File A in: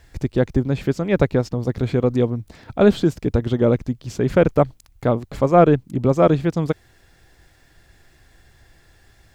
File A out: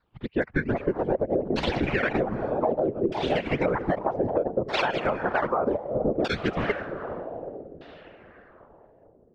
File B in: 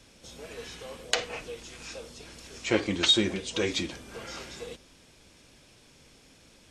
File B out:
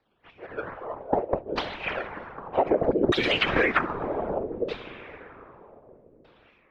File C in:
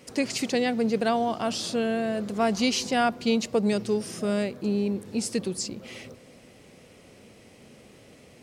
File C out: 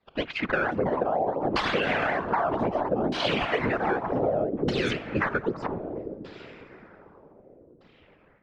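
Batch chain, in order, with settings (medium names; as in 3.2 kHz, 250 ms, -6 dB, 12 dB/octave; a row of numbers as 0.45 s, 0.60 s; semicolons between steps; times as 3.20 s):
expander on every frequency bin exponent 1.5; tone controls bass -11 dB, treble 0 dB; decimation with a swept rate 13×, swing 160% 2.1 Hz; level rider gain up to 14 dB; echo that smears into a reverb 458 ms, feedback 47%, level -15.5 dB; dynamic bell 1.6 kHz, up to +5 dB, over -29 dBFS, Q 0.77; ever faster or slower copies 433 ms, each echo +4 st, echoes 2, each echo -6 dB; LFO low-pass saw down 0.64 Hz 340–4300 Hz; peak limiter -6.5 dBFS; whisper effect; level-controlled noise filter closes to 3 kHz, open at -12 dBFS; compression 8:1, threshold -21 dBFS; normalise loudness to -27 LUFS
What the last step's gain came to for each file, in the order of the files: -0.5 dB, +2.5 dB, -1.5 dB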